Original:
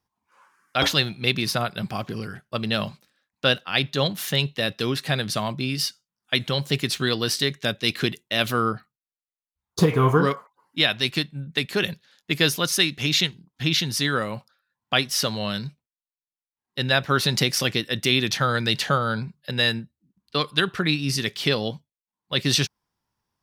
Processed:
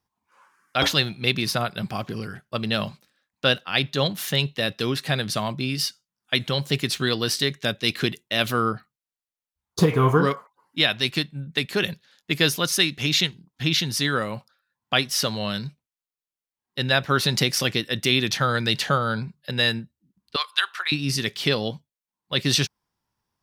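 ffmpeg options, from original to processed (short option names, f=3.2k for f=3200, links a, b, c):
-filter_complex "[0:a]asettb=1/sr,asplit=3[a][b][c];[a]atrim=end=20.364[d];[b]atrim=start=20.36:end=20.92,asetpts=PTS-STARTPTS,afade=t=in:d=0.004:c=qsin,afade=t=out:st=0.556:d=0.004:c=qsin,highpass=f=870:w=0.5412,highpass=f=870:w=1.3066[e];[c]atrim=start=20.916[f];[d][e]acrossfade=d=0.004:c1=hsin:c2=qsin[g];[g][f]acrossfade=d=0.004:c1=qsin:c2=hsin"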